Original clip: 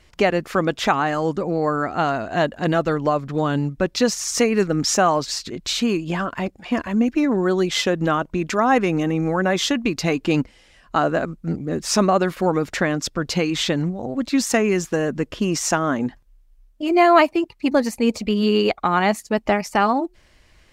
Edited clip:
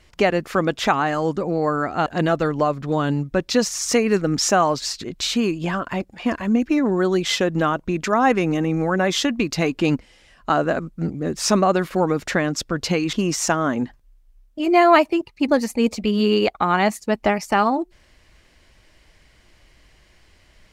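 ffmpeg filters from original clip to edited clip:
-filter_complex "[0:a]asplit=3[a][b][c];[a]atrim=end=2.062[d];[b]atrim=start=2.518:end=13.592[e];[c]atrim=start=15.358[f];[d][e]acrossfade=d=0.004:c1=hsin:c2=hsin[g];[g][f]acrossfade=d=0.004:c1=hsin:c2=hsin"

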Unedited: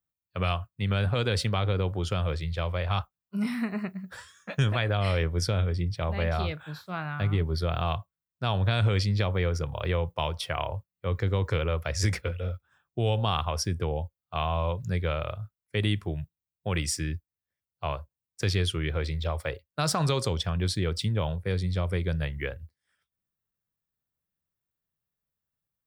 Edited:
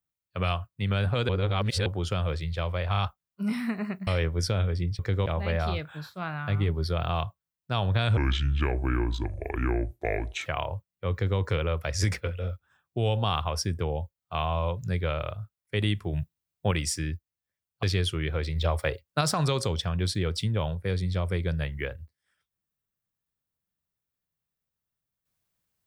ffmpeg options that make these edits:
-filter_complex "[0:a]asplit=15[a][b][c][d][e][f][g][h][i][j][k][l][m][n][o];[a]atrim=end=1.292[p];[b]atrim=start=1.288:end=1.862,asetpts=PTS-STARTPTS,areverse[q];[c]atrim=start=1.858:end=2.942[r];[d]atrim=start=2.908:end=2.942[s];[e]atrim=start=2.908:end=4.012[t];[f]atrim=start=5.058:end=5.982[u];[g]atrim=start=11.128:end=11.402[v];[h]atrim=start=5.978:end=8.894[w];[i]atrim=start=8.89:end=10.47,asetpts=PTS-STARTPTS,asetrate=30429,aresample=44100[x];[j]atrim=start=10.466:end=16.142[y];[k]atrim=start=16.138:end=16.722,asetpts=PTS-STARTPTS,volume=5dB[z];[l]atrim=start=16.718:end=17.842[aa];[m]atrim=start=18.438:end=19.172[ab];[n]atrim=start=19.168:end=19.822,asetpts=PTS-STARTPTS,volume=4dB[ac];[o]atrim=start=19.818[ad];[p][q]acrossfade=d=0.004:c1=hsin:c2=hsin[ae];[ae][r]acrossfade=d=0.004:c1=hsin:c2=hsin[af];[af][s]acrossfade=d=0.004:c1=hsin:c2=hsin[ag];[ag][t]acrossfade=d=0.004:c1=hsin:c2=hsin[ah];[ah][u]acrossfade=d=0.004:c1=hsin:c2=hsin[ai];[ai][v]acrossfade=d=0.004:c1=hsin:c2=hsin[aj];[aj][w]acrossfade=d=0.004:c1=hsin:c2=hsin[ak];[ak][x]acrossfade=d=0.004:c1=hsin:c2=hsin[al];[al][y]acrossfade=d=0.004:c1=hsin:c2=hsin[am];[am][z]acrossfade=d=0.004:c1=hsin:c2=hsin[an];[an][aa]acrossfade=d=0.004:c1=hsin:c2=hsin[ao];[ao][ab]acrossfade=d=0.004:c1=hsin:c2=hsin[ap];[ap][ac]acrossfade=d=0.004:c1=hsin:c2=hsin[aq];[aq][ad]acrossfade=d=0.004:c1=hsin:c2=hsin"

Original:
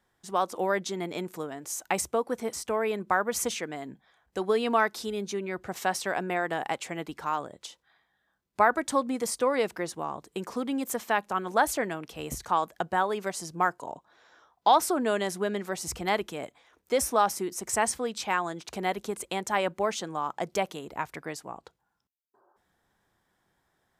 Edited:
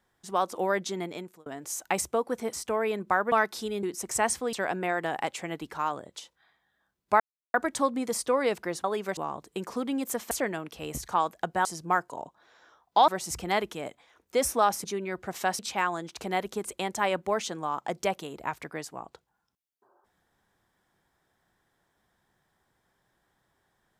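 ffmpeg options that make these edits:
-filter_complex "[0:a]asplit=13[a][b][c][d][e][f][g][h][i][j][k][l][m];[a]atrim=end=1.46,asetpts=PTS-STARTPTS,afade=t=out:st=0.99:d=0.47[n];[b]atrim=start=1.46:end=3.322,asetpts=PTS-STARTPTS,afade=t=in:d=0.004:c=hsin[o];[c]atrim=start=4.738:end=5.252[p];[d]atrim=start=17.408:end=18.112[q];[e]atrim=start=5.998:end=8.67,asetpts=PTS-STARTPTS,afade=t=out:st=2.668:d=0.004:c=hsin,apad=pad_dur=0.34[r];[f]atrim=start=8.67:end=9.972,asetpts=PTS-STARTPTS,afade=t=in:d=0.004:c=hsin[s];[g]atrim=start=13.018:end=13.352[t];[h]atrim=start=9.968:end=11.112[u];[i]atrim=start=11.678:end=13.022[v];[j]atrim=start=13.348:end=14.782[w];[k]atrim=start=15.648:end=17.412[x];[l]atrim=start=5.248:end=6.002[y];[m]atrim=start=18.108[z];[n][o]concat=n=2:v=0:a=1[aa];[aa][p]acrossfade=d=0.004:c1=hsin:c2=hsin[ab];[ab][q]acrossfade=d=0.004:c1=hsin:c2=hsin[ac];[r][s]concat=n=2:v=0:a=1[ad];[ac][ad]acrossfade=d=0.004:c1=hsin:c2=hsin[ae];[ae][t]acrossfade=d=0.004:c1=hsin:c2=hsin[af];[af][u]acrossfade=d=0.004:c1=hsin:c2=hsin[ag];[ag][v]acrossfade=d=0.004:c1=hsin:c2=hsin[ah];[ah][w]acrossfade=d=0.004:c1=hsin:c2=hsin[ai];[ai][x]acrossfade=d=0.004:c1=hsin:c2=hsin[aj];[aj][y]acrossfade=d=0.004:c1=hsin:c2=hsin[ak];[ak][z]acrossfade=d=0.004:c1=hsin:c2=hsin"

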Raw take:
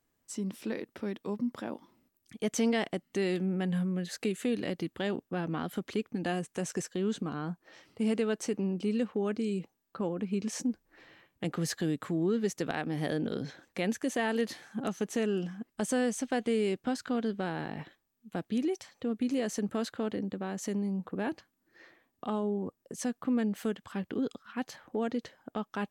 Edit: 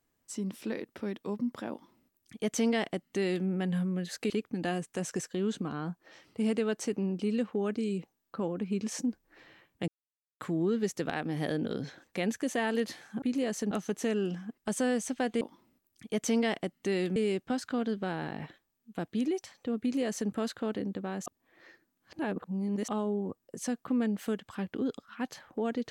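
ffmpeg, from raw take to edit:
-filter_complex "[0:a]asplit=10[a][b][c][d][e][f][g][h][i][j];[a]atrim=end=4.302[k];[b]atrim=start=5.908:end=11.49,asetpts=PTS-STARTPTS,afade=t=out:st=5.578:d=0.004:c=hsin[l];[c]atrim=start=11.49:end=12.01,asetpts=PTS-STARTPTS,volume=0[m];[d]atrim=start=12.01:end=14.832,asetpts=PTS-STARTPTS,afade=t=in:d=0.004:c=hsin[n];[e]atrim=start=19.178:end=19.672[o];[f]atrim=start=14.828:end=16.532[p];[g]atrim=start=1.708:end=3.462[q];[h]atrim=start=16.528:end=20.632[r];[i]atrim=start=20.628:end=22.252,asetpts=PTS-STARTPTS,areverse[s];[j]atrim=start=22.248[t];[l][m][n]concat=n=3:v=0:a=1[u];[k][u]acrossfade=d=0.004:c1=hsin:c2=hsin[v];[v][o]acrossfade=d=0.004:c1=hsin:c2=hsin[w];[w][p]acrossfade=d=0.004:c1=hsin:c2=hsin[x];[x][q]acrossfade=d=0.004:c1=hsin:c2=hsin[y];[y][r]acrossfade=d=0.004:c1=hsin:c2=hsin[z];[z][s]acrossfade=d=0.004:c1=hsin:c2=hsin[aa];[aa][t]acrossfade=d=0.004:c1=hsin:c2=hsin"

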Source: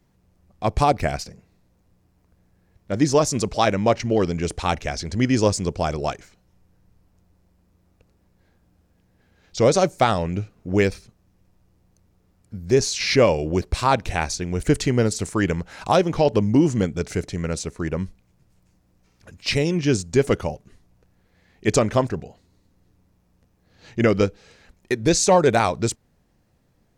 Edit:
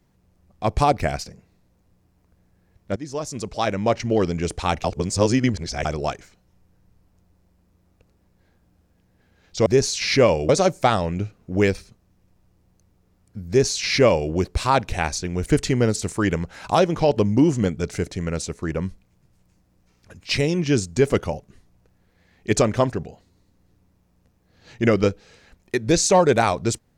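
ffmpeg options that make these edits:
-filter_complex "[0:a]asplit=6[a][b][c][d][e][f];[a]atrim=end=2.96,asetpts=PTS-STARTPTS,afade=t=out:st=2.956:d=0.004:c=hsin:silence=0.112202[g];[b]atrim=start=2.96:end=4.842,asetpts=PTS-STARTPTS,afade=t=in:d=1.17:silence=0.112202[h];[c]atrim=start=4.838:end=5.852,asetpts=PTS-STARTPTS,areverse[i];[d]atrim=start=5.848:end=9.662[j];[e]atrim=start=12.648:end=13.482[k];[f]atrim=start=9.658[l];[g][h]concat=n=2:v=0:a=1[m];[m][i]acrossfade=d=0.004:c1=hsin:c2=hsin[n];[n][j]acrossfade=d=0.004:c1=hsin:c2=hsin[o];[o][k]acrossfade=d=0.004:c1=hsin:c2=hsin[p];[p][l]acrossfade=d=0.004:c1=hsin:c2=hsin"

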